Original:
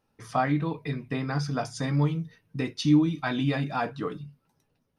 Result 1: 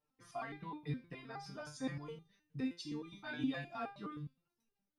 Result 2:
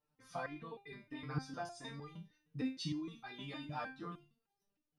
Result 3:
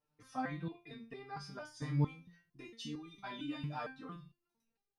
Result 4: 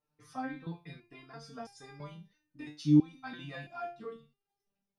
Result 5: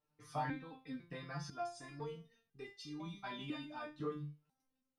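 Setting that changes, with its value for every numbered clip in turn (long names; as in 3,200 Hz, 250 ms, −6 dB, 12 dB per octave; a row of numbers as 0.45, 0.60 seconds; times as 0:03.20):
step-sequenced resonator, speed: 9.6, 6.5, 4.4, 3, 2 Hertz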